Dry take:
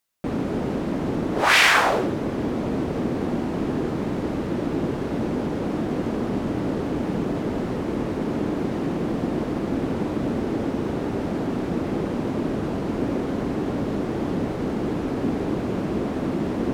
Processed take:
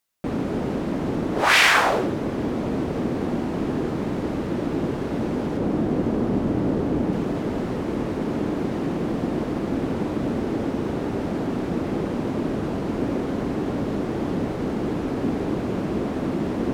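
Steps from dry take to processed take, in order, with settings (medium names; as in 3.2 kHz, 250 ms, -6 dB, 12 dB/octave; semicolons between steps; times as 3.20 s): 5.57–7.13 s: tilt shelf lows +3.5 dB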